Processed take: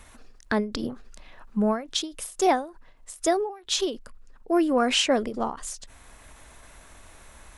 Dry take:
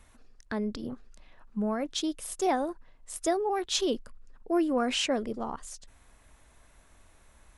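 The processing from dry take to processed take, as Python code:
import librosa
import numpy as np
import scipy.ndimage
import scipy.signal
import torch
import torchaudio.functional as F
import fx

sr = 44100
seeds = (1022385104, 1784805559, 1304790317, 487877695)

y = fx.rider(x, sr, range_db=4, speed_s=2.0)
y = fx.low_shelf(y, sr, hz=370.0, db=-4.0)
y = fx.end_taper(y, sr, db_per_s=140.0)
y = F.gain(torch.from_numpy(y), 8.0).numpy()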